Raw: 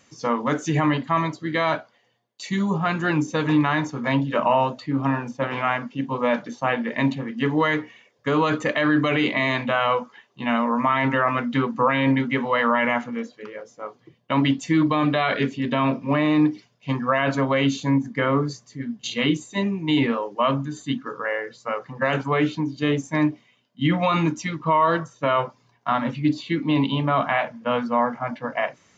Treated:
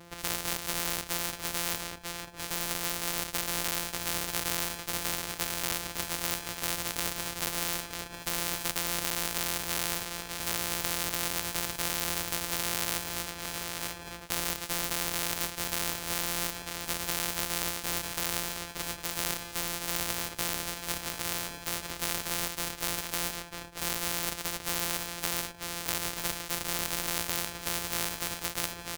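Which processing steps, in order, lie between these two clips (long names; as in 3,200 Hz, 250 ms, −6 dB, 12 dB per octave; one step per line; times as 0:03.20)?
samples sorted by size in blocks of 256 samples
repeating echo 945 ms, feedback 22%, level −15.5 dB
every bin compressed towards the loudest bin 4 to 1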